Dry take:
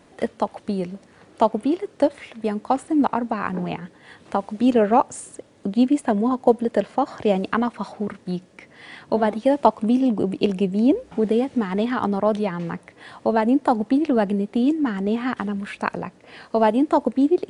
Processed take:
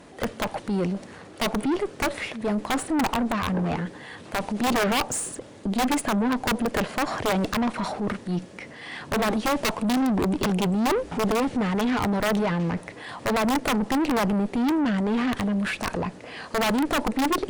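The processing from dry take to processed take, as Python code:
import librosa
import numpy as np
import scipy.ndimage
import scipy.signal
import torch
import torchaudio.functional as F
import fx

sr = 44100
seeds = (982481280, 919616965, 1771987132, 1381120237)

y = (np.mod(10.0 ** (11.5 / 20.0) * x + 1.0, 2.0) - 1.0) / 10.0 ** (11.5 / 20.0)
y = fx.transient(y, sr, attack_db=-6, sustain_db=4)
y = fx.tube_stage(y, sr, drive_db=27.0, bias=0.4)
y = y * 10.0 ** (6.5 / 20.0)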